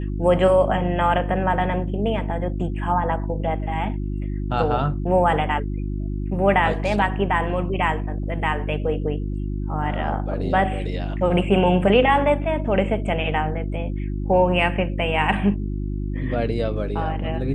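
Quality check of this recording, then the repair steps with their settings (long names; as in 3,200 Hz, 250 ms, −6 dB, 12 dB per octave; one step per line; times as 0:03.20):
mains hum 50 Hz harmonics 7 −26 dBFS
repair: hum removal 50 Hz, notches 7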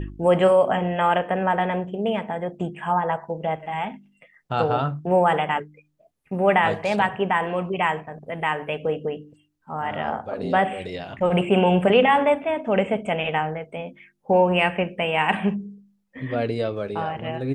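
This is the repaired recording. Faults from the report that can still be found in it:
none of them is left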